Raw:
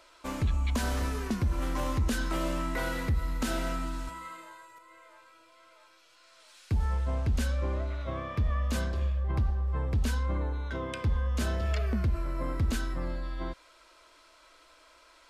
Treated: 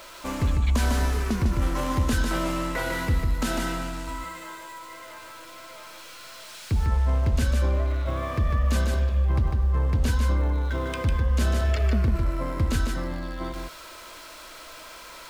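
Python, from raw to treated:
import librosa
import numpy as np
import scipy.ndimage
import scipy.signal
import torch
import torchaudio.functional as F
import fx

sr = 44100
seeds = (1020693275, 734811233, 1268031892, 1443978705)

y = x + 0.5 * 10.0 ** (-44.5 / 20.0) * np.sign(x)
y = y + 10.0 ** (-4.5 / 20.0) * np.pad(y, (int(150 * sr / 1000.0), 0))[:len(y)]
y = F.gain(torch.from_numpy(y), 3.5).numpy()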